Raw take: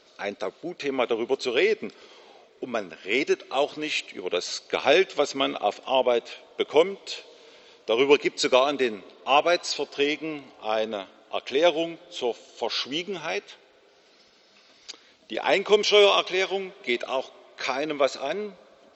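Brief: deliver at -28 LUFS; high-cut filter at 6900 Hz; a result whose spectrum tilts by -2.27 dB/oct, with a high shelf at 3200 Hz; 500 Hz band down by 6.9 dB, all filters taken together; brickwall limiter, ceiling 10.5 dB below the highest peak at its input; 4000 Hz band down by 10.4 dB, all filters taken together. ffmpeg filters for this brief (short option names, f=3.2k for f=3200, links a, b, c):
-af "lowpass=6.9k,equalizer=f=500:t=o:g=-8.5,highshelf=f=3.2k:g=-7.5,equalizer=f=4k:t=o:g=-8.5,volume=6.5dB,alimiter=limit=-14dB:level=0:latency=1"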